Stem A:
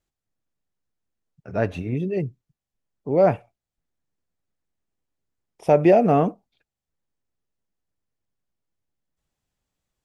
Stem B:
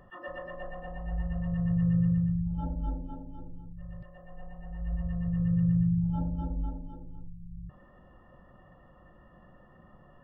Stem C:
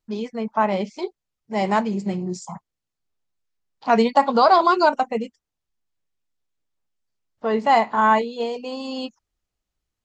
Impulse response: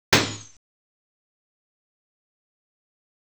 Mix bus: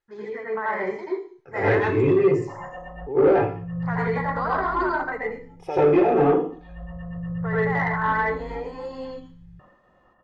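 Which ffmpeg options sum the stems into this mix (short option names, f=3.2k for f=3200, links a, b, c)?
-filter_complex "[0:a]aecho=1:1:2.4:0.82,alimiter=limit=-12.5dB:level=0:latency=1:release=268,acompressor=threshold=-18dB:ratio=6,volume=-13dB,asplit=3[a][b][c];[b]volume=-13.5dB[d];[1:a]agate=range=-33dB:threshold=-49dB:ratio=3:detection=peak,adelay=1900,volume=-1.5dB[e];[2:a]firequalizer=gain_entry='entry(110,0);entry(220,-21);entry(380,-7);entry(590,-13);entry(1900,5);entry(2600,-22);entry(7100,-10)':delay=0.05:min_phase=1,alimiter=limit=-23dB:level=0:latency=1:release=81,volume=-6dB,asplit=2[f][g];[g]volume=-21dB[h];[c]apad=whole_len=535356[i];[e][i]sidechaincompress=threshold=-55dB:ratio=8:attack=16:release=362[j];[3:a]atrim=start_sample=2205[k];[d][h]amix=inputs=2:normalize=0[l];[l][k]afir=irnorm=-1:irlink=0[m];[a][j][f][m]amix=inputs=4:normalize=0,asplit=2[n][o];[o]highpass=f=720:p=1,volume=16dB,asoftclip=type=tanh:threshold=-8.5dB[p];[n][p]amix=inputs=2:normalize=0,lowpass=f=2.1k:p=1,volume=-6dB"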